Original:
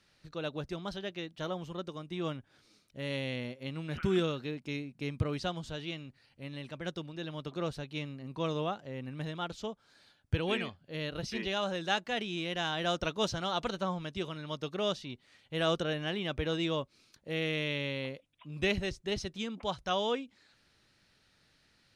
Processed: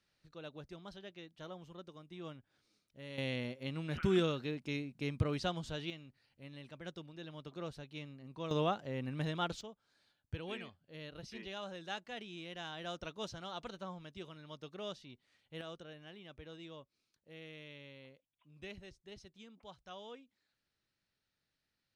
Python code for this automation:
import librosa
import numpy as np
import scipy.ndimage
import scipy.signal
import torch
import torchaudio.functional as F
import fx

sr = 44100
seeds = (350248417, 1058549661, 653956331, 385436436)

y = fx.gain(x, sr, db=fx.steps((0.0, -11.5), (3.18, -1.5), (5.9, -8.5), (8.51, 1.0), (9.61, -11.5), (15.61, -18.5)))